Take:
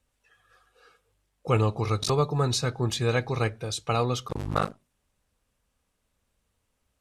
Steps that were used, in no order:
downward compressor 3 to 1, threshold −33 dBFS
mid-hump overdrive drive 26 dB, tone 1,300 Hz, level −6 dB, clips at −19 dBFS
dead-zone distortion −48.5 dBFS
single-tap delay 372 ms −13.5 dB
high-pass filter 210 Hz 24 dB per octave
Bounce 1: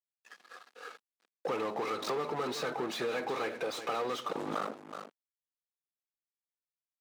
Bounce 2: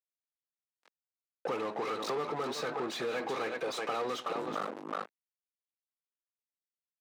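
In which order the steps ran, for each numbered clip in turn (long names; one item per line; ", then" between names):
mid-hump overdrive, then single-tap delay, then dead-zone distortion, then high-pass filter, then downward compressor
single-tap delay, then dead-zone distortion, then mid-hump overdrive, then downward compressor, then high-pass filter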